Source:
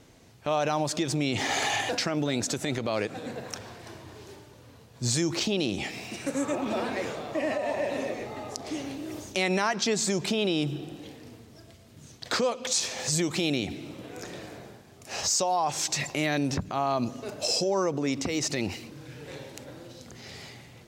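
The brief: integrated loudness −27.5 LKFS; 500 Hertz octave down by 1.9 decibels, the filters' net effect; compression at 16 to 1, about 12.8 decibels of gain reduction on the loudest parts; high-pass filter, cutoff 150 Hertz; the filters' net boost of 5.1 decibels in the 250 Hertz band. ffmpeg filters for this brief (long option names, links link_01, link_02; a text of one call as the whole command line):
ffmpeg -i in.wav -af "highpass=150,equalizer=frequency=250:width_type=o:gain=9,equalizer=frequency=500:width_type=o:gain=-5.5,acompressor=threshold=-32dB:ratio=16,volume=9.5dB" out.wav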